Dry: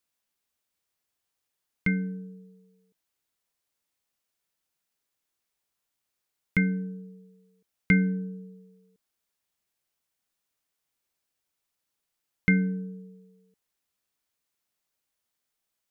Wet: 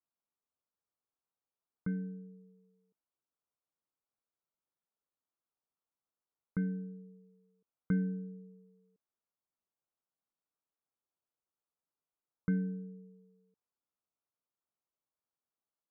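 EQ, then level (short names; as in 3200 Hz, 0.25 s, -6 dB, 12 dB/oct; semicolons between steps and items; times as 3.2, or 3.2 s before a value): steep low-pass 1400 Hz 48 dB/oct; low shelf 63 Hz -10 dB; -7.5 dB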